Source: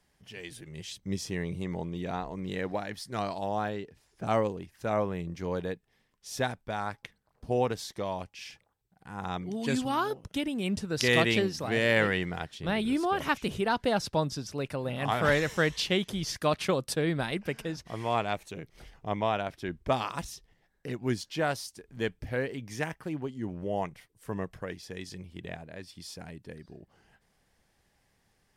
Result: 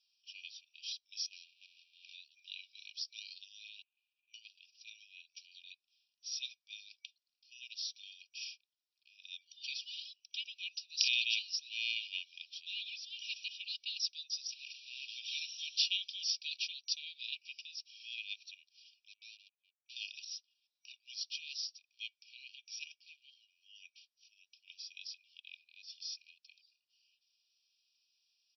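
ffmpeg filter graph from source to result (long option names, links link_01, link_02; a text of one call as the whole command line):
ffmpeg -i in.wav -filter_complex "[0:a]asettb=1/sr,asplit=3[link_01][link_02][link_03];[link_01]atrim=end=1.264[link_04];[link_02]atrim=start=1.26:end=2.13,asetpts=PTS-STARTPTS,afade=type=in:duration=0.004:curve=qsin,afade=type=out:start_time=0.866:duration=0.004:curve=qsin,aeval=exprs='val(0)+0.5*0.015*sgn(val(0))':channel_layout=same,adynamicsmooth=sensitivity=3:basefreq=680,lowpass=10000[link_05];[link_03]atrim=start=2.126[link_06];[link_04][link_05]acrossfade=duration=0.004:curve1=hsin:curve2=qsin[link_07];[link_07][link_06]acrossfade=duration=0.004:curve1=qsin:curve2=hsin,asettb=1/sr,asplit=3[link_08][link_09][link_10];[link_08]atrim=end=3.824[link_11];[link_09]atrim=start=3.82:end=4.34,asetpts=PTS-STARTPTS,afade=type=in:duration=0.004:curve=qsin,afade=type=out:start_time=0.516:duration=0.004:curve=qsin,aeval=exprs='val(0)+0.5*0.0112*sgn(val(0))':channel_layout=same,lowpass=frequency=1200:width=0.5412,lowpass=frequency=1200:width=1.3066[link_12];[link_10]atrim=start=4.336[link_13];[link_11][link_12]acrossfade=duration=0.004:curve1=hsin:curve2=qsin[link_14];[link_14][link_13]acrossfade=duration=0.004:curve1=qsin:curve2=hsin,asettb=1/sr,asplit=3[link_15][link_16][link_17];[link_15]atrim=end=14.504[link_18];[link_16]atrim=start=14.5:end=15.18,asetpts=PTS-STARTPTS,afade=type=in:duration=0.004:curve=qsin,afade=type=out:start_time=0.676:duration=0.004:curve=qsin,aeval=exprs='val(0)+0.5*0.0251*sgn(val(0))':channel_layout=same,aeval=exprs='(tanh(25.1*val(0)+0.5)-tanh(0.5))/25.1':channel_layout=same,highshelf=frequency=7000:gain=-11.5[link_19];[link_17]atrim=start=15.176[link_20];[link_18][link_19]acrossfade=duration=0.004:curve1=hsin:curve2=qsin[link_21];[link_21][link_20]acrossfade=duration=0.004:curve1=qsin:curve2=hsin,asettb=1/sr,asplit=3[link_22][link_23][link_24];[link_22]atrim=end=19.084[link_25];[link_23]atrim=start=19.08:end=19.96,asetpts=PTS-STARTPTS,afade=type=in:duration=0.004:curve=qsin,afade=type=out:start_time=0.876:duration=0.004:curve=qsin,lowpass=frequency=1100:width=0.5412,lowpass=frequency=1100:width=1.3066,aeval=exprs='(tanh(56.2*val(0)+0.5)-tanh(0.5))/56.2':channel_layout=same[link_26];[link_24]atrim=start=19.956[link_27];[link_25][link_26]acrossfade=duration=0.004:curve1=hsin:curve2=qsin[link_28];[link_28][link_27]acrossfade=duration=0.004:curve1=qsin:curve2=hsin,afftfilt=real='re*between(b*sr/4096,2300,5800)':imag='im*between(b*sr/4096,2300,5800)':win_size=4096:overlap=0.75,aderivative,aecho=1:1:2.8:0.51,volume=5dB" out.wav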